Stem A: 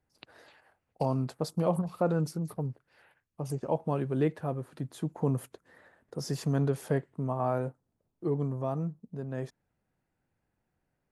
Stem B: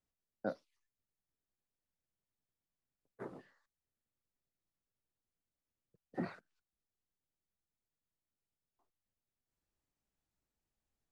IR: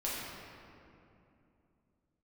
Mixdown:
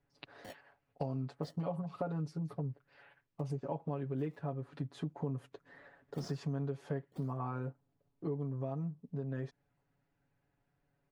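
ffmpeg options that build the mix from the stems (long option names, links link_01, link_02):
-filter_complex "[0:a]lowpass=4400,aecho=1:1:7.1:0.99,volume=-2dB,asplit=2[link_01][link_02];[1:a]lowpass=1200,acrusher=samples=20:mix=1:aa=0.000001:lfo=1:lforange=32:lforate=0.42,asoftclip=type=tanh:threshold=-39.5dB,volume=1dB,asplit=2[link_03][link_04];[link_04]volume=-7.5dB[link_05];[link_02]apad=whole_len=490372[link_06];[link_03][link_06]sidechaingate=range=-48dB:threshold=-55dB:ratio=16:detection=peak[link_07];[link_05]aecho=0:1:982:1[link_08];[link_01][link_07][link_08]amix=inputs=3:normalize=0,acompressor=threshold=-36dB:ratio=4"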